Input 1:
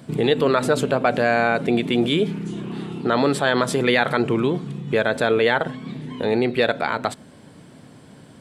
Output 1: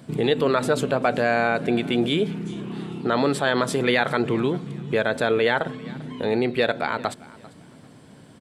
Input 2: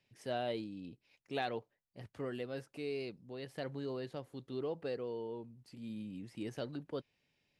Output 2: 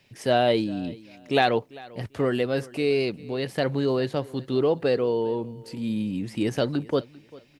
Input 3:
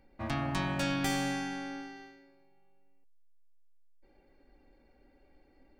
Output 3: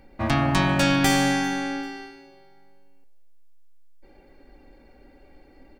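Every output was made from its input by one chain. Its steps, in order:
feedback echo 0.395 s, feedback 25%, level -21.5 dB; normalise peaks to -6 dBFS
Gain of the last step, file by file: -2.5, +16.5, +11.5 dB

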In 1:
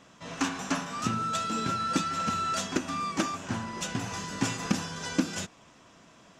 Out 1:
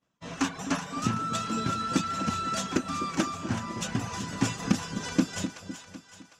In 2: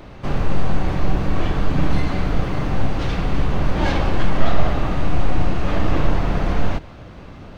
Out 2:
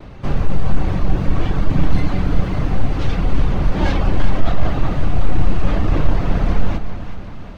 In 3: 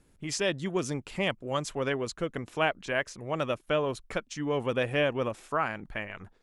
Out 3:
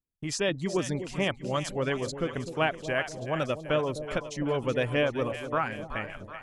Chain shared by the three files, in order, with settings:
reverb removal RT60 0.54 s; expander -42 dBFS; low shelf 250 Hz +5 dB; soft clip -0.5 dBFS; split-band echo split 690 Hz, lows 0.254 s, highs 0.377 s, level -10 dB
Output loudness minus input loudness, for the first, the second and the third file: +0.5, +2.0, +1.0 LU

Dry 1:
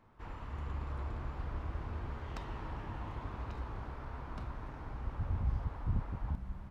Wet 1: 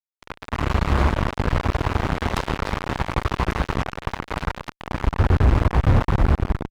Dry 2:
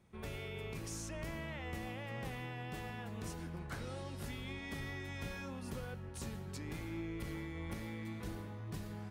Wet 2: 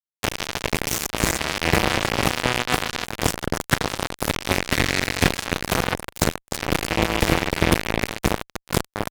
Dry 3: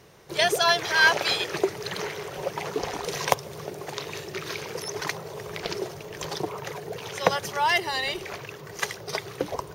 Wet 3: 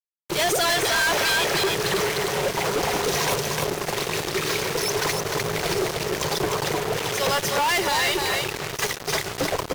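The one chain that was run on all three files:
feedback echo 0.303 s, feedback 19%, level -6.5 dB; fuzz box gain 39 dB, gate -37 dBFS; match loudness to -23 LUFS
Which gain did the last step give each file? +2.5, +10.0, -6.5 dB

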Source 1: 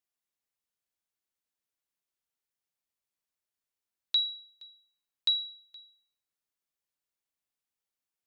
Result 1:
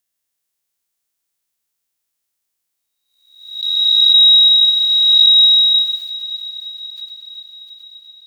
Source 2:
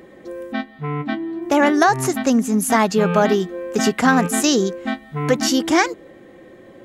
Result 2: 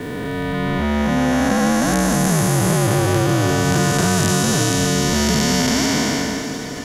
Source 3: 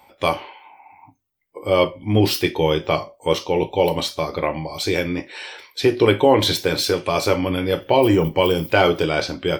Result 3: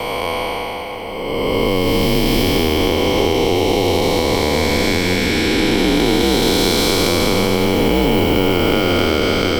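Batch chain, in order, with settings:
time blur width 0.845 s; gate with hold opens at -50 dBFS; high shelf 4100 Hz +9 dB; compressor, threshold -26 dBFS; frequency shift -75 Hz; on a send: diffused feedback echo 0.662 s, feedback 56%, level -13 dB; on the sum: backwards sustainer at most 88 dB/s; normalise peaks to -2 dBFS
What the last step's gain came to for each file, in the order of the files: +30.0, +12.0, +14.5 dB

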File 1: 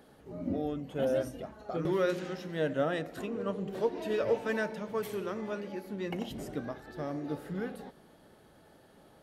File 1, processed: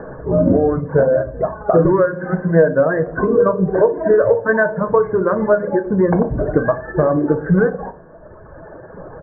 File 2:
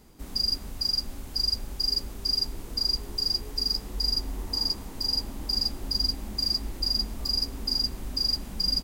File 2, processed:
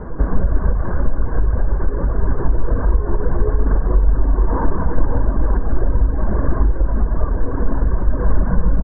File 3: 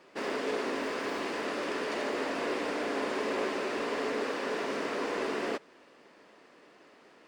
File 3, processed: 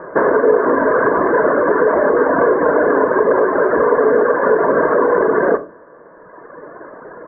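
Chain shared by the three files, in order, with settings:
reverb removal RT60 1.9 s; steep low-pass 1700 Hz 72 dB/oct; comb 1.9 ms, depth 43%; compressor 12:1, threshold -37 dBFS; shoebox room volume 170 m³, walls furnished, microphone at 0.6 m; normalise peaks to -1.5 dBFS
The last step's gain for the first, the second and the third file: +26.0, +25.5, +26.5 dB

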